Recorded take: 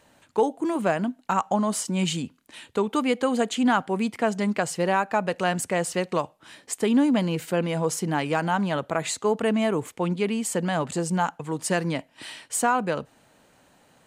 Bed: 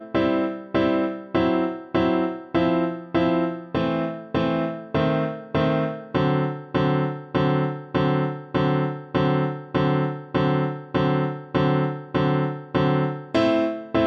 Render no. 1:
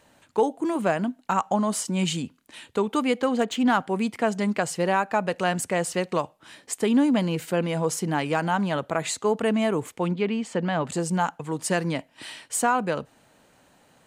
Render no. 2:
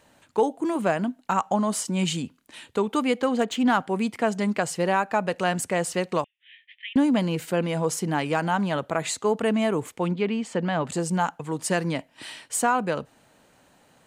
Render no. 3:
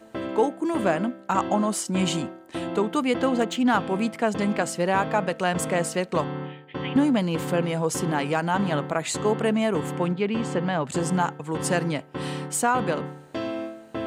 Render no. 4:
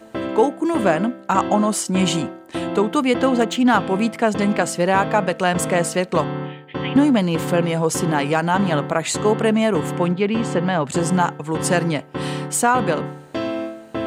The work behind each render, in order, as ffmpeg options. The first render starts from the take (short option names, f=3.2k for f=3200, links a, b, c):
-filter_complex "[0:a]asettb=1/sr,asplit=3[a][b][c];[a]atrim=end=3.214[d];[b]atrim=start=3.21:end=3.8,asetpts=PTS-STARTPTS,afade=t=in:d=0.004:c=qsin,afade=t=out:st=0.586:d=0.004:c=qsin,adynamicsmooth=sensitivity=5.5:basefreq=4.6k[e];[c]atrim=start=3.796[f];[d][e]acrossfade=d=0.004:c1=hsin:c2=qsin[g];[g][f]acrossfade=d=0.004:c1=qsin:c2=hsin,asettb=1/sr,asplit=3[h][i][j];[h]atrim=end=10.114[k];[i]atrim=start=10.11:end=10.85,asetpts=PTS-STARTPTS,afade=t=in:d=0.004:c=qsin,afade=t=out:st=0.736:d=0.004:c=qsin,lowpass=3.8k[l];[j]atrim=start=10.846[m];[k][l]acrossfade=d=0.004:c1=hsin:c2=qsin[n];[n][m]acrossfade=d=0.004:c1=qsin:c2=hsin"
-filter_complex "[0:a]asettb=1/sr,asplit=3[a][b][c];[a]atrim=end=6.244[d];[b]atrim=start=6.24:end=6.96,asetpts=PTS-STARTPTS,afade=t=in:d=0.004:c=qsin,afade=t=out:st=0.716:d=0.004:c=qsin,asuperpass=centerf=2500:order=12:qfactor=1.5[e];[c]atrim=start=6.956[f];[d][e]acrossfade=d=0.004:c1=hsin:c2=qsin[g];[g][f]acrossfade=d=0.004:c1=qsin:c2=hsin"
-filter_complex "[1:a]volume=-10.5dB[a];[0:a][a]amix=inputs=2:normalize=0"
-af "volume=5.5dB"